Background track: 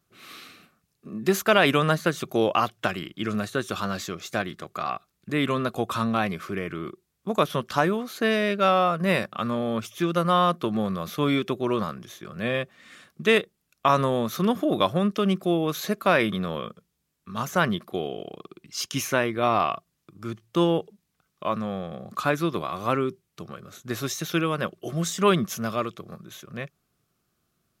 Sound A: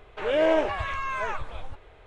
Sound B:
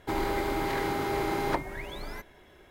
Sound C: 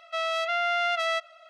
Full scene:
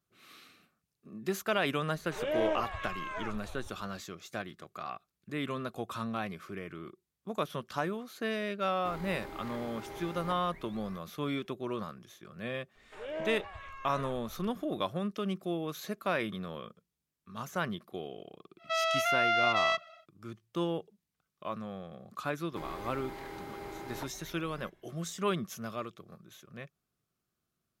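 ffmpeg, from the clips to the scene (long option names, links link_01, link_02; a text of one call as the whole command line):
ffmpeg -i bed.wav -i cue0.wav -i cue1.wav -i cue2.wav -filter_complex "[1:a]asplit=2[link_01][link_02];[2:a]asplit=2[link_03][link_04];[0:a]volume=-11dB[link_05];[3:a]lowpass=frequency=7100:width=0.5412,lowpass=frequency=7100:width=1.3066[link_06];[link_01]atrim=end=2.06,asetpts=PTS-STARTPTS,volume=-9.5dB,afade=type=in:duration=0.004:curve=hsin,afade=type=out:start_time=2.056:duration=0.004:curve=hsin,adelay=1940[link_07];[link_03]atrim=end=2.7,asetpts=PTS-STARTPTS,volume=-15dB,afade=type=in:duration=0.004:curve=hsin,afade=type=out:start_time=2.696:duration=0.004:curve=hsin,adelay=8770[link_08];[link_02]atrim=end=2.06,asetpts=PTS-STARTPTS,volume=-16dB,afade=type=in:duration=0.004:curve=hsin,afade=type=out:start_time=2.056:duration=0.004:curve=hsin,adelay=12750[link_09];[link_06]atrim=end=1.49,asetpts=PTS-STARTPTS,volume=-1.5dB,afade=type=in:duration=0.1,afade=type=out:start_time=1.39:duration=0.1,adelay=18570[link_10];[link_04]atrim=end=2.7,asetpts=PTS-STARTPTS,volume=-14dB,afade=type=in:duration=0.004:curve=hsin,afade=type=out:start_time=2.696:duration=0.004:curve=hsin,adelay=22480[link_11];[link_05][link_07][link_08][link_09][link_10][link_11]amix=inputs=6:normalize=0" out.wav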